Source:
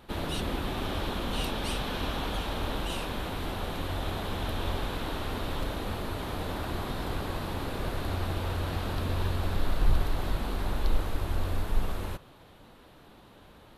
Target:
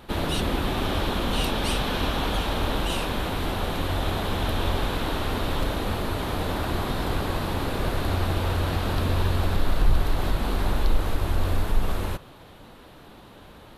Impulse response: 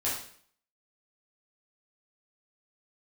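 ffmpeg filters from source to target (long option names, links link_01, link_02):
-filter_complex "[0:a]asplit=2[link_01][link_02];[link_02]alimiter=limit=-20dB:level=0:latency=1:release=119,volume=1dB[link_03];[link_01][link_03]amix=inputs=2:normalize=0"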